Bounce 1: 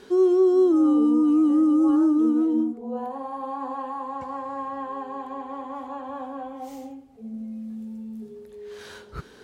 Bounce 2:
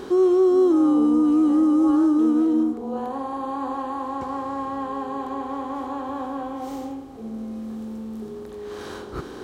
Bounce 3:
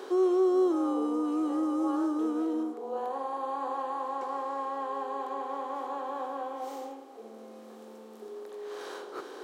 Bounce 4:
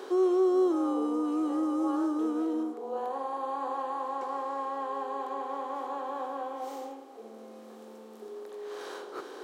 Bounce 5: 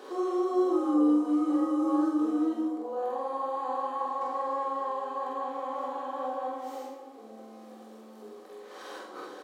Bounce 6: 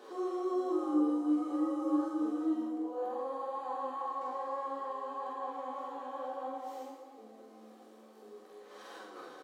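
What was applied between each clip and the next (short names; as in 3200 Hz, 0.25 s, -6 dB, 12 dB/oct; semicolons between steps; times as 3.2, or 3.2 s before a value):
per-bin compression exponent 0.6
ladder high-pass 350 Hz, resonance 25%; gain +1 dB
nothing audible
doubler 47 ms -2 dB; shoebox room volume 330 m³, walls furnished, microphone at 2 m; gain -5.5 dB
feedback echo 0.111 s, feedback 56%, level -10 dB; flange 0.56 Hz, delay 8.3 ms, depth 9.2 ms, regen +42%; gain -2.5 dB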